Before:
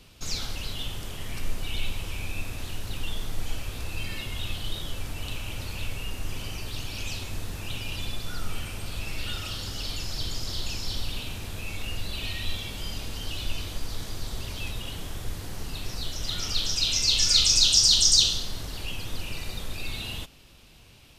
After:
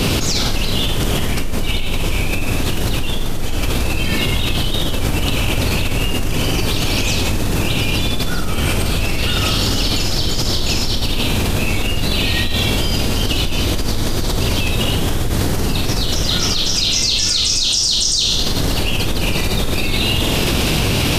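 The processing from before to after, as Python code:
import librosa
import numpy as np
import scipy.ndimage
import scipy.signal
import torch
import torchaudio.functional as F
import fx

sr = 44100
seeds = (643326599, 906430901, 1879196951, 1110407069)

y = fx.peak_eq(x, sr, hz=290.0, db=6.5, octaves=2.6)
y = fx.room_flutter(y, sr, wall_m=8.6, rt60_s=0.36)
y = fx.env_flatten(y, sr, amount_pct=100)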